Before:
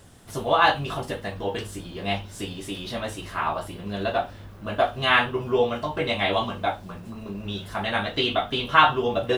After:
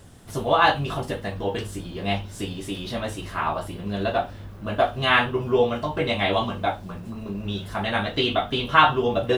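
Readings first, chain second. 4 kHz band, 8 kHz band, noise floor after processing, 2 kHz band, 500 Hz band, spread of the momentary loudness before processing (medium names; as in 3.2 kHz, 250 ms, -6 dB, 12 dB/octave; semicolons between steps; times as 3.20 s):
0.0 dB, 0.0 dB, -39 dBFS, 0.0 dB, +1.5 dB, 15 LU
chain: bass shelf 400 Hz +4 dB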